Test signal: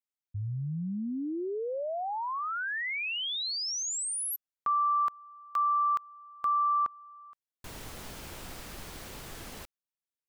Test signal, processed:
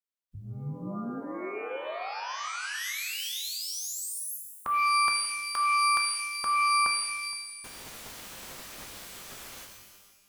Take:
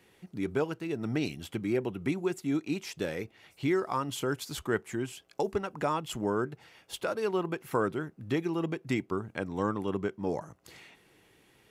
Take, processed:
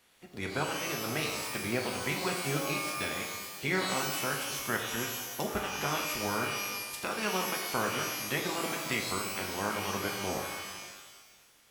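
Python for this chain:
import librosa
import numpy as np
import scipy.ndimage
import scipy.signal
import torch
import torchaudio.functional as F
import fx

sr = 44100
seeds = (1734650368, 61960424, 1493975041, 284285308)

y = fx.spec_clip(x, sr, under_db=18)
y = y + 10.0 ** (-21.5 / 20.0) * np.pad(y, (int(469 * sr / 1000.0), 0))[:len(y)]
y = fx.rev_shimmer(y, sr, seeds[0], rt60_s=1.1, semitones=12, shimmer_db=-2, drr_db=2.0)
y = y * librosa.db_to_amplitude(-4.5)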